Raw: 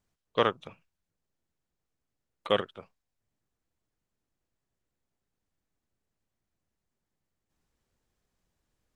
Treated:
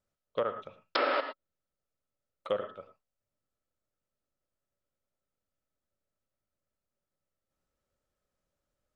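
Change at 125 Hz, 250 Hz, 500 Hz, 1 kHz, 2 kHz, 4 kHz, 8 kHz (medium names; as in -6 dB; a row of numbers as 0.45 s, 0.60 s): -11.0 dB, -5.5 dB, -2.0 dB, -0.5 dB, +1.0 dB, -4.0 dB, no reading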